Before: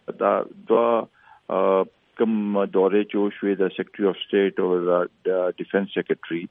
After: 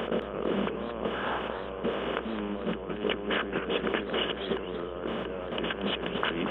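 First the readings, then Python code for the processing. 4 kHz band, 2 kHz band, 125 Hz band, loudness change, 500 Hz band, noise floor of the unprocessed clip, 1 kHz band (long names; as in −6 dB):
can't be measured, −1.0 dB, −5.0 dB, −9.0 dB, −11.0 dB, −63 dBFS, −7.5 dB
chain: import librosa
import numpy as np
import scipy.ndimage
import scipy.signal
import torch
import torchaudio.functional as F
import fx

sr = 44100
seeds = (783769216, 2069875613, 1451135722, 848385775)

y = fx.bin_compress(x, sr, power=0.4)
y = fx.over_compress(y, sr, threshold_db=-26.0, ratio=-1.0)
y = fx.add_hum(y, sr, base_hz=60, snr_db=18)
y = fx.echo_warbled(y, sr, ms=224, feedback_pct=39, rate_hz=2.8, cents=211, wet_db=-9.0)
y = y * librosa.db_to_amplitude(-7.5)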